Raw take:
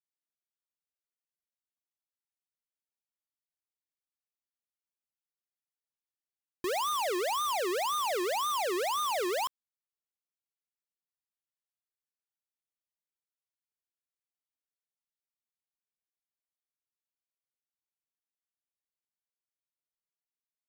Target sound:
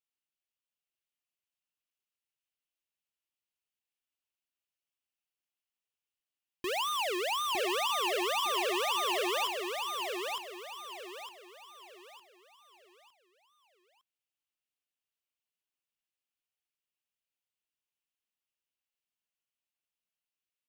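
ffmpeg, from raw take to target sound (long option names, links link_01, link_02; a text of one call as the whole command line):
ffmpeg -i in.wav -af "equalizer=frequency=2800:width_type=o:width=0.55:gain=10.5,aecho=1:1:908|1816|2724|3632|4540:0.631|0.233|0.0864|0.032|0.0118,volume=-3dB" out.wav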